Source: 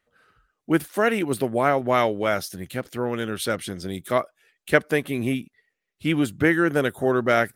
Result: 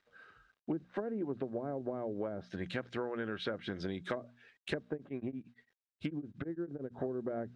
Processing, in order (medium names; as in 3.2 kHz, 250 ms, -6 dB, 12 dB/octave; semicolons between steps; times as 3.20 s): low-pass that closes with the level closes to 400 Hz, closed at -18 dBFS; bass shelf 110 Hz -8 dB; hum notches 60/120/180/240 Hz; compression 12:1, threshold -33 dBFS, peak gain reduction 16 dB; word length cut 12-bit, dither none; distance through air 130 m; small resonant body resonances 1.6/3.8 kHz, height 9 dB, ringing for 35 ms; 4.93–6.95 s: tremolo of two beating tones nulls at 8.9 Hz